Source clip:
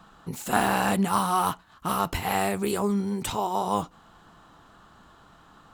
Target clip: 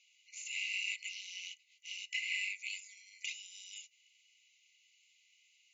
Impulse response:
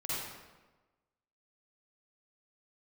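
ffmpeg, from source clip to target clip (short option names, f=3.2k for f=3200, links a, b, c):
-filter_complex "[0:a]afftfilt=real='re*between(b*sr/4096,2000,7300)':imag='im*between(b*sr/4096,2000,7300)':win_size=4096:overlap=0.75,acrossover=split=4000[a][b];[b]acompressor=threshold=-44dB:ratio=4:attack=1:release=60[c];[a][c]amix=inputs=2:normalize=0,superequalizer=13b=0.282:14b=0.501,volume=1.5dB"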